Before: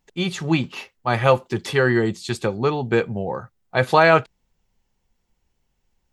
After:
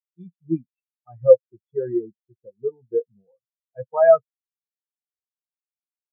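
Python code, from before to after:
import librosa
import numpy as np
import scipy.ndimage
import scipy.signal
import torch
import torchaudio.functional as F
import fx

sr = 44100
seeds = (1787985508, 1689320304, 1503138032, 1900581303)

y = 10.0 ** (-4.5 / 20.0) * np.tanh(x / 10.0 ** (-4.5 / 20.0))
y = fx.spectral_expand(y, sr, expansion=4.0)
y = y * librosa.db_to_amplitude(4.5)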